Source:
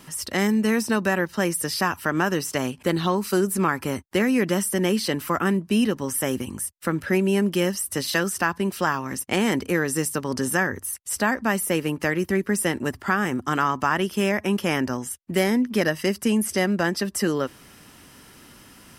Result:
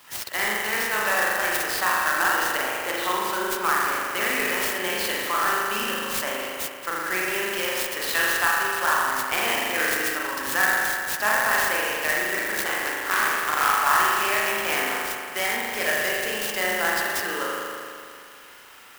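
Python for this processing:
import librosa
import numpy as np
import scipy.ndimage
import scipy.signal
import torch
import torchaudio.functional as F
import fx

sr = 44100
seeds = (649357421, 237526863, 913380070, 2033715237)

y = fx.cycle_switch(x, sr, every=3, mode='muted', at=(12.35, 13.83))
y = scipy.signal.sosfilt(scipy.signal.butter(2, 900.0, 'highpass', fs=sr, output='sos'), y)
y = fx.rev_spring(y, sr, rt60_s=2.3, pass_ms=(38,), chirp_ms=25, drr_db=-5.5)
y = fx.clock_jitter(y, sr, seeds[0], jitter_ms=0.037)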